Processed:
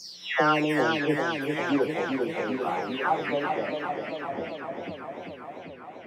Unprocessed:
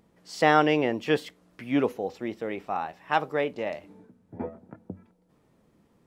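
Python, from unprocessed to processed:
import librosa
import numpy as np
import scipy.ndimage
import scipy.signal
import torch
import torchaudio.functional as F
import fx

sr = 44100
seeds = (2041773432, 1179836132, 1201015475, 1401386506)

y = fx.spec_delay(x, sr, highs='early', ms=474)
y = fx.highpass(y, sr, hz=130.0, slope=6)
y = fx.echo_warbled(y, sr, ms=395, feedback_pct=75, rate_hz=2.8, cents=100, wet_db=-5.0)
y = F.gain(torch.from_numpy(y), 1.0).numpy()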